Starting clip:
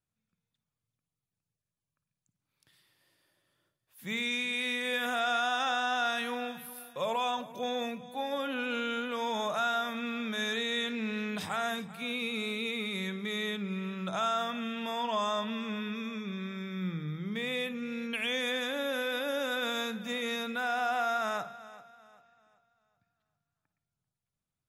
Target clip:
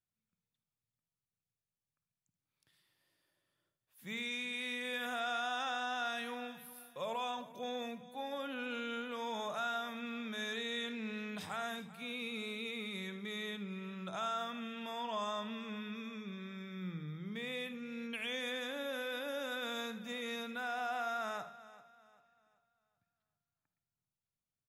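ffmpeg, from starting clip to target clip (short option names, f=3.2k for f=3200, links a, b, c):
-af "aecho=1:1:77:0.178,volume=-7.5dB"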